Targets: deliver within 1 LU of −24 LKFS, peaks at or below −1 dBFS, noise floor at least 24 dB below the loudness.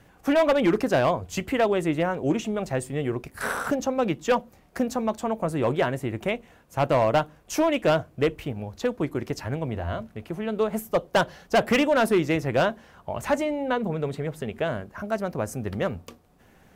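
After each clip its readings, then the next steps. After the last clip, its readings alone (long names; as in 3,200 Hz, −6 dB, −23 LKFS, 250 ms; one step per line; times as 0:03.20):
share of clipped samples 1.2%; peaks flattened at −15.0 dBFS; integrated loudness −26.0 LKFS; sample peak −15.0 dBFS; target loudness −24.0 LKFS
→ clipped peaks rebuilt −15 dBFS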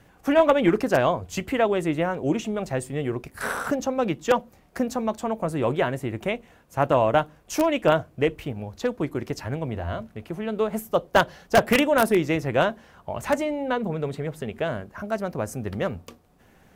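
share of clipped samples 0.0%; integrated loudness −25.0 LKFS; sample peak −6.0 dBFS; target loudness −24.0 LKFS
→ level +1 dB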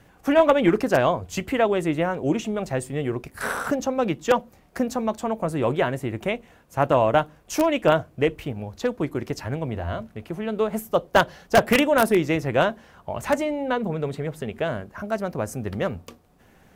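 integrated loudness −24.0 LKFS; sample peak −5.0 dBFS; background noise floor −56 dBFS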